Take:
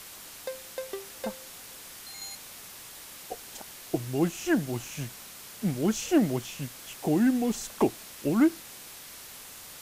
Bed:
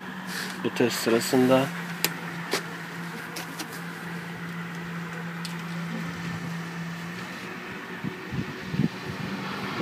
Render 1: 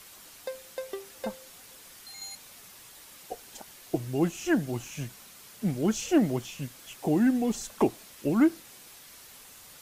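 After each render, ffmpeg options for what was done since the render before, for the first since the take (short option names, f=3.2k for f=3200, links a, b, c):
-af "afftdn=nr=6:nf=-46"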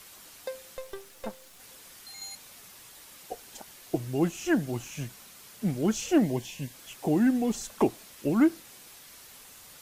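-filter_complex "[0:a]asettb=1/sr,asplit=3[a][b][c];[a]atrim=end=0.774[d];[b]atrim=start=0.77:end=1.6,asetpts=PTS-STARTPTS,afade=t=in:d=0.004:c=qsin,afade=t=out:st=0.826:d=0.004:c=qsin,aeval=exprs='if(lt(val(0),0),0.251*val(0),val(0))':c=same[e];[c]atrim=start=1.596[f];[d][e]acrossfade=d=0.004:c1=hsin:c2=qsin[g];[g][f]acrossfade=d=0.004:c1=qsin:c2=hsin,asettb=1/sr,asplit=3[h][i][j];[h]atrim=end=6.244[k];[i]atrim=start=6.24:end=6.74,asetpts=PTS-STARTPTS,afade=t=in:d=0.004:c=qsin,afade=t=out:st=0.496:d=0.004:c=qsin,asuperstop=centerf=1300:order=8:qfactor=3.2[l];[j]atrim=start=6.736[m];[k][l]acrossfade=d=0.004:c1=hsin:c2=qsin[n];[n][m]acrossfade=d=0.004:c1=qsin:c2=hsin"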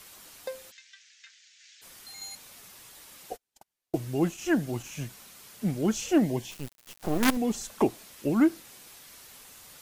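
-filter_complex "[0:a]asplit=3[a][b][c];[a]afade=t=out:st=0.7:d=0.02[d];[b]asuperpass=centerf=3500:order=12:qfactor=0.65,afade=t=in:st=0.7:d=0.02,afade=t=out:st=1.81:d=0.02[e];[c]afade=t=in:st=1.81:d=0.02[f];[d][e][f]amix=inputs=3:normalize=0,asplit=3[g][h][i];[g]afade=t=out:st=3.33:d=0.02[j];[h]agate=range=-38dB:threshold=-42dB:ratio=16:release=100:detection=peak,afade=t=in:st=3.33:d=0.02,afade=t=out:st=4.83:d=0.02[k];[i]afade=t=in:st=4.83:d=0.02[l];[j][k][l]amix=inputs=3:normalize=0,asettb=1/sr,asplit=3[m][n][o];[m]atrim=end=6.514[p];[n]atrim=start=6.51:end=7.37,asetpts=PTS-STARTPTS,afade=t=in:d=0.004:c=qsin,afade=t=out:st=0.856:d=0.004:c=qsin,acrusher=bits=4:dc=4:mix=0:aa=0.000001[q];[o]atrim=start=7.366[r];[p][q]acrossfade=d=0.004:c1=hsin:c2=qsin[s];[s][r]acrossfade=d=0.004:c1=qsin:c2=hsin"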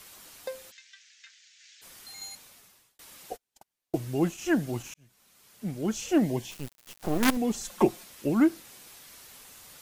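-filter_complex "[0:a]asettb=1/sr,asplit=3[a][b][c];[a]atrim=end=7.644[d];[b]atrim=start=7.64:end=8.04,asetpts=PTS-STARTPTS,afade=t=in:d=0.004:c=qsin,afade=t=out:st=0.396:d=0.004:c=qsin,aecho=1:1:5.6:0.65,atrim=end_sample=17640[e];[c]atrim=start=8.036[f];[d][e]acrossfade=d=0.004:c1=hsin:c2=qsin[g];[g][f]acrossfade=d=0.004:c1=qsin:c2=hsin,asplit=3[h][i][j];[h]atrim=end=2.99,asetpts=PTS-STARTPTS,afade=t=out:st=2.23:d=0.76[k];[i]atrim=start=2.99:end=4.94,asetpts=PTS-STARTPTS,afade=t=in:d=0.004:c=hsin,afade=t=out:st=1.946:d=0.004:c=hsin[l];[j]atrim=start=4.94,asetpts=PTS-STARTPTS,afade=t=in:d=1.35[m];[k][l][m]concat=n=3:v=0:a=1"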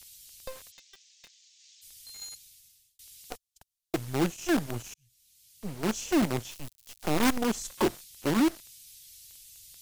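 -filter_complex "[0:a]acrossover=split=120|2900[a][b][c];[b]acrusher=bits=5:dc=4:mix=0:aa=0.000001[d];[a][d][c]amix=inputs=3:normalize=0,asoftclip=type=hard:threshold=-19.5dB"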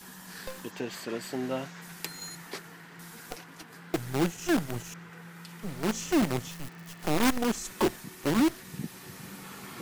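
-filter_complex "[1:a]volume=-12.5dB[a];[0:a][a]amix=inputs=2:normalize=0"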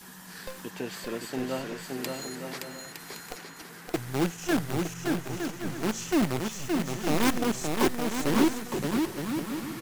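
-af "aecho=1:1:570|912|1117|1240|1314:0.631|0.398|0.251|0.158|0.1"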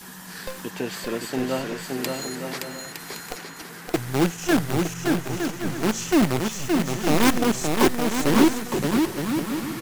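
-af "volume=6dB"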